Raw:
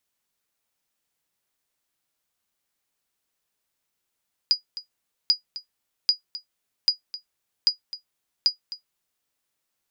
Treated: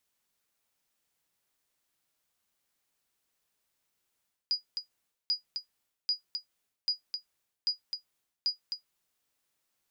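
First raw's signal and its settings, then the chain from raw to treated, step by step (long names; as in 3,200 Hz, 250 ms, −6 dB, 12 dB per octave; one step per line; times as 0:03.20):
ping with an echo 4,900 Hz, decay 0.12 s, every 0.79 s, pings 6, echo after 0.26 s, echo −15.5 dB −9.5 dBFS
reversed playback
downward compressor 6 to 1, threshold −30 dBFS
reversed playback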